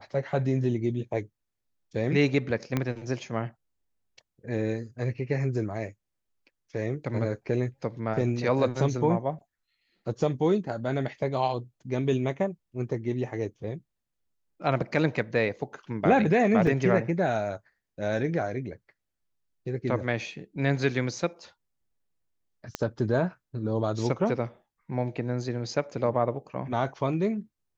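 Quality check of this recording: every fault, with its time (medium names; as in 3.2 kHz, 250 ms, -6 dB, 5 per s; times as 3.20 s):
2.77 s: pop -13 dBFS
16.67 s: dropout 2.5 ms
22.75 s: pop -15 dBFS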